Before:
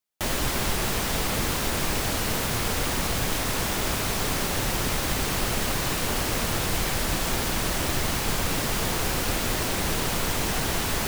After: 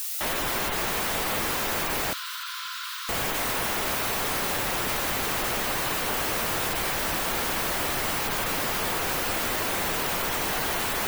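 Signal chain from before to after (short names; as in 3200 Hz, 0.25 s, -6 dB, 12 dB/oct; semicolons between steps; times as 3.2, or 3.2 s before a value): overdrive pedal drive 20 dB, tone 2200 Hz, clips at -12 dBFS; added noise blue -26 dBFS; 2.13–3.09 rippled Chebyshev high-pass 990 Hz, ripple 9 dB; spectral gate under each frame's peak -20 dB strong; on a send: thin delay 0.235 s, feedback 44%, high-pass 3100 Hz, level -17.5 dB; on the sum: gain -5.5 dB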